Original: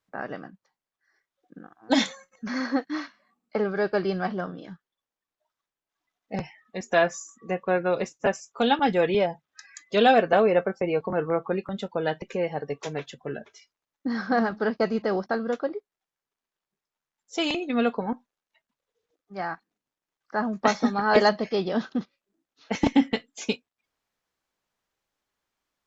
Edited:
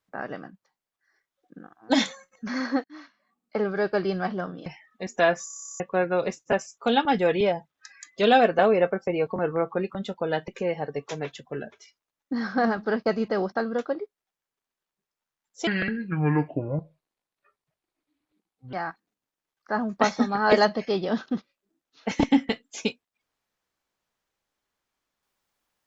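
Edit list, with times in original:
2.84–3.64 s: fade in, from -22.5 dB
4.66–6.40 s: delete
7.21 s: stutter in place 0.03 s, 11 plays
17.41–19.37 s: speed 64%

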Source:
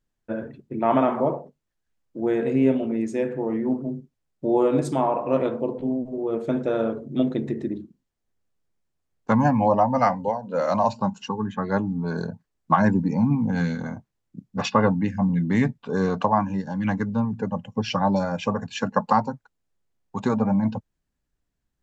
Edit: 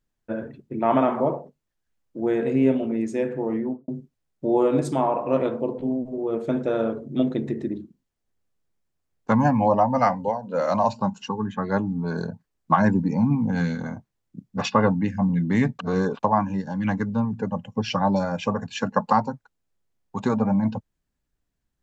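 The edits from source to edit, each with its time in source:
3.56–3.88 s: studio fade out
15.79–16.23 s: reverse

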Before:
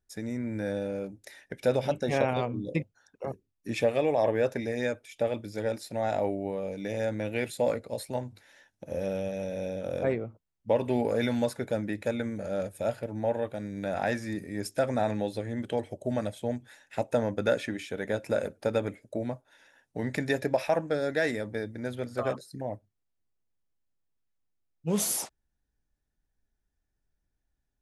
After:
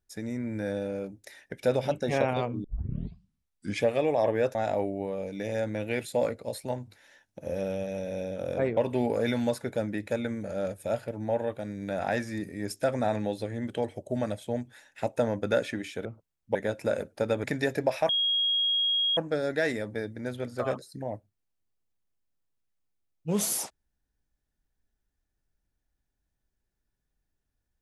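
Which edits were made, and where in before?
2.64 s: tape start 1.20 s
4.55–6.00 s: delete
10.22–10.72 s: move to 18.00 s
18.89–20.11 s: delete
20.76 s: add tone 3.28 kHz -23 dBFS 1.08 s

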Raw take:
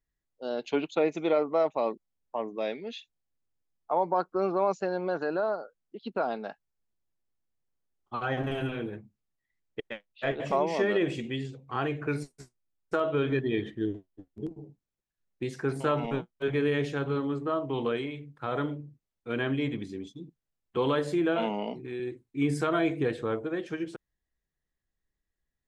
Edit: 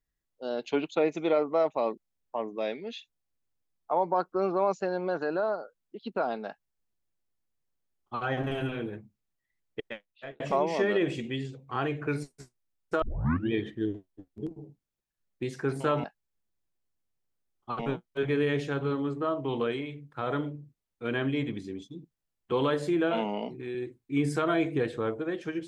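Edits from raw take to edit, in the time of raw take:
6.48–8.23 s: copy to 16.04 s
9.88–10.40 s: fade out
13.02 s: tape start 0.50 s

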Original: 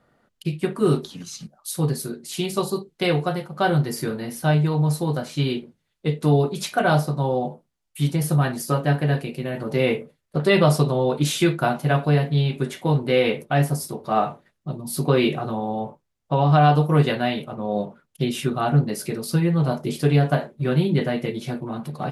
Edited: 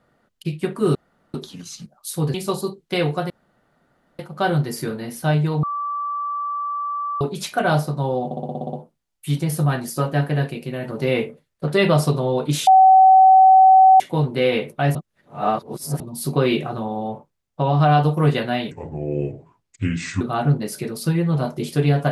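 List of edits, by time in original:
0.95 s: insert room tone 0.39 s
1.95–2.43 s: delete
3.39 s: insert room tone 0.89 s
4.83–6.41 s: bleep 1.16 kHz -22.5 dBFS
7.45 s: stutter 0.06 s, 9 plays
11.39–12.72 s: bleep 760 Hz -7 dBFS
13.67–14.72 s: reverse
17.43–18.48 s: speed 70%

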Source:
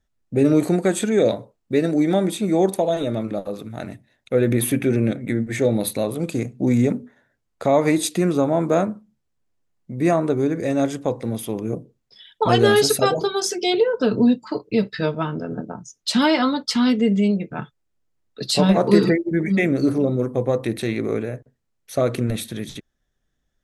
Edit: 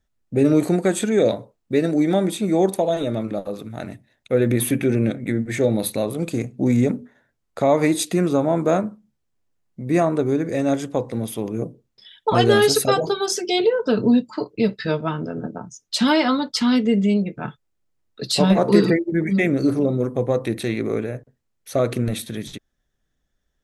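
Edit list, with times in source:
shrink pauses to 90%

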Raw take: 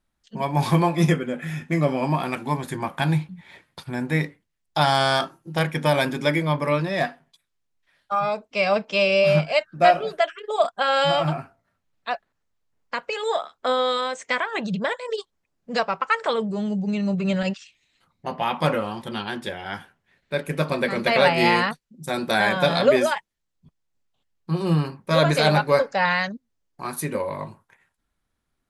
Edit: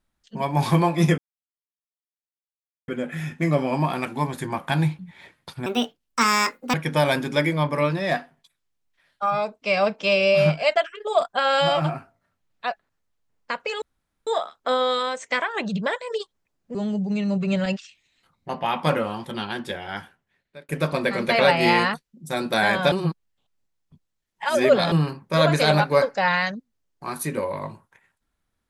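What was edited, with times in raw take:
1.18 s: insert silence 1.70 s
3.96–5.63 s: speed 155%
9.65–10.19 s: delete
13.25 s: insert room tone 0.45 s
15.73–16.52 s: delete
19.69–20.46 s: fade out
22.69–24.69 s: reverse

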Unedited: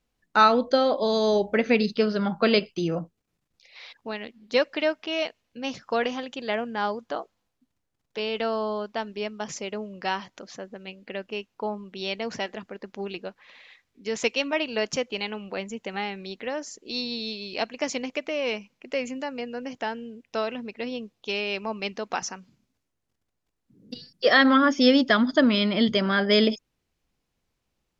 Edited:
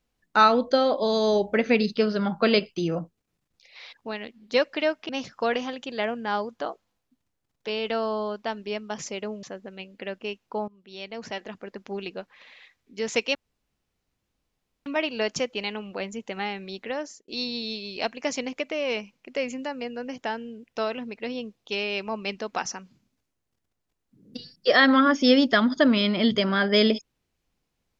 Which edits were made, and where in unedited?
5.09–5.59 s: delete
9.93–10.51 s: delete
11.76–12.76 s: fade in, from -20.5 dB
14.43 s: insert room tone 1.51 s
16.57–16.85 s: fade out

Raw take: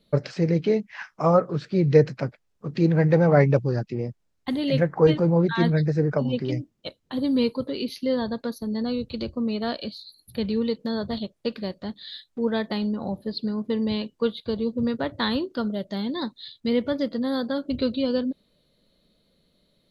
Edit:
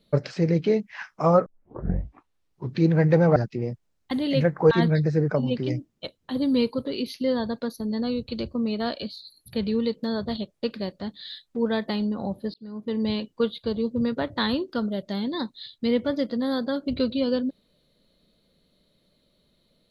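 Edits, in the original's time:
1.46 s: tape start 1.40 s
3.36–3.73 s: delete
5.08–5.53 s: delete
13.36–13.87 s: fade in

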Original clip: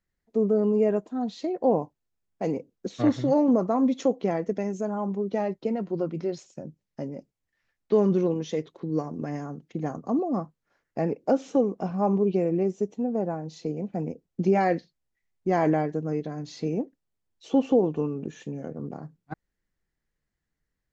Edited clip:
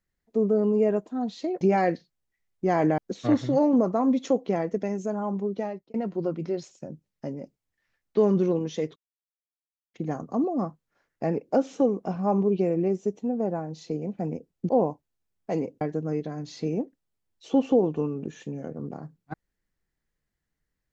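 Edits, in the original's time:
1.61–2.73 s: swap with 14.44–15.81 s
5.23–5.69 s: fade out
8.71–9.69 s: mute

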